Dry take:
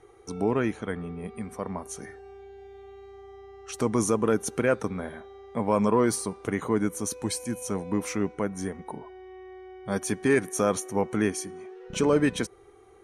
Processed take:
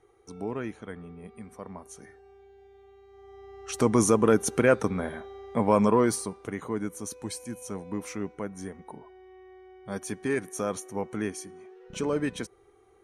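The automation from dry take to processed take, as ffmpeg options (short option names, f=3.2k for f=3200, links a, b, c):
-af "volume=3dB,afade=t=in:st=3.08:d=0.68:silence=0.281838,afade=t=out:st=5.62:d=0.88:silence=0.354813"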